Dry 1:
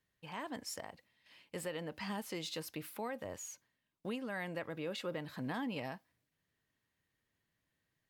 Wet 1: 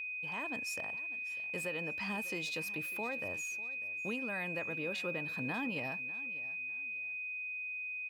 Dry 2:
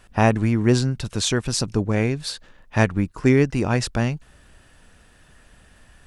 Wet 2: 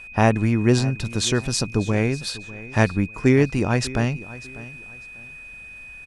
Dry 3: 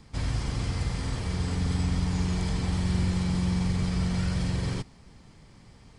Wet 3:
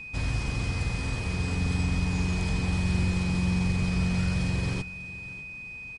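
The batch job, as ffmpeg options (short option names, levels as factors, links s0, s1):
-af "aecho=1:1:597|1194:0.126|0.0352,aeval=exprs='val(0)+0.0126*sin(2*PI*2500*n/s)':c=same"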